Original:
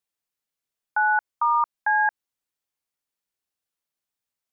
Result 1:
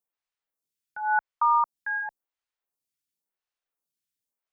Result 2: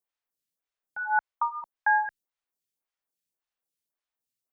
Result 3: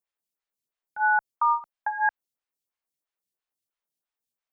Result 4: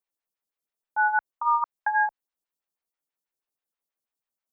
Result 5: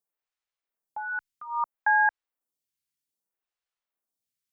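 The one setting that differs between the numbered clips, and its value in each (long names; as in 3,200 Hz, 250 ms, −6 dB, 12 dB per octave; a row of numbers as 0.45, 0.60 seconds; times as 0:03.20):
phaser with staggered stages, speed: 0.93, 1.8, 3, 6.2, 0.62 Hertz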